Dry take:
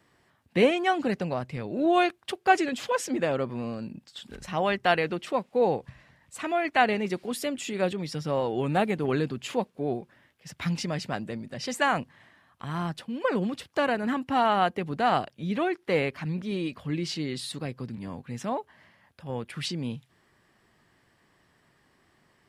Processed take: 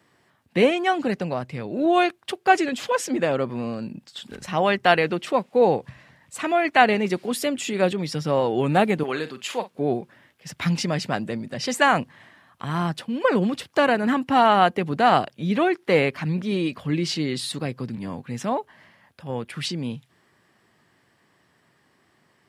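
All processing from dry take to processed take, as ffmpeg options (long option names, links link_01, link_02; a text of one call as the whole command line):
ffmpeg -i in.wav -filter_complex "[0:a]asettb=1/sr,asplit=3[link_01][link_02][link_03];[link_01]atrim=end=9.034[link_04];[link_02]atrim=start=9.03:end=9.71,asetpts=PTS-STARTPTS,afade=type=in:duration=0.004:curve=qsin,afade=type=out:start_time=0.676:duration=0.004:curve=qsin,highpass=frequency=860:poles=1,asplit=2[link_05][link_06];[link_06]adelay=46,volume=-13dB[link_07];[link_05][link_07]amix=inputs=2:normalize=0,atrim=end_sample=29988[link_08];[link_03]atrim=start=9.706[link_09];[link_04][link_08]acrossfade=duration=0.004:curve1=hsin:curve2=qsin[link_10];[link_10][link_09]acrossfade=duration=0.004:curve1=qsin:curve2=hsin,highpass=96,dynaudnorm=framelen=230:gausssize=31:maxgain=3.5dB,volume=3dB" out.wav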